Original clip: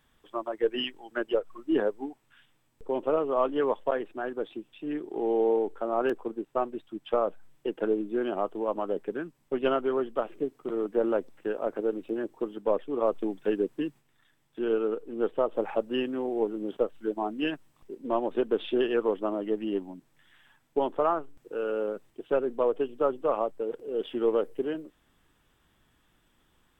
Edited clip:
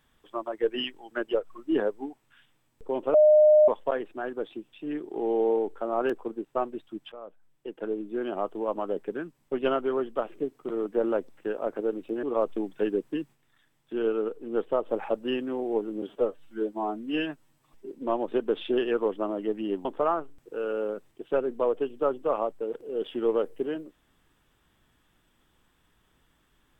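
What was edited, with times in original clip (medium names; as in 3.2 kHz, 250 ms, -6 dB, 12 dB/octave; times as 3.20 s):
3.14–3.68 s: bleep 609 Hz -13.5 dBFS
7.12–8.53 s: fade in, from -21 dB
12.23–12.89 s: delete
16.68–17.94 s: stretch 1.5×
19.88–20.84 s: delete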